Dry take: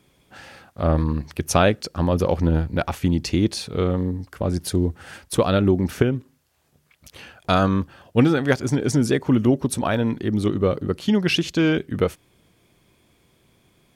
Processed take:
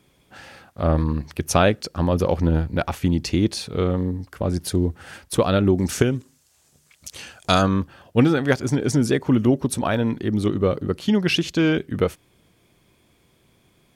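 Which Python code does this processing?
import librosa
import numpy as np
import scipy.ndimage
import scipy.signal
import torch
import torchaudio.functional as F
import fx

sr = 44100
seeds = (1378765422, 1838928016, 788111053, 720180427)

y = fx.peak_eq(x, sr, hz=7300.0, db=14.0, octaves=1.5, at=(5.78, 7.62))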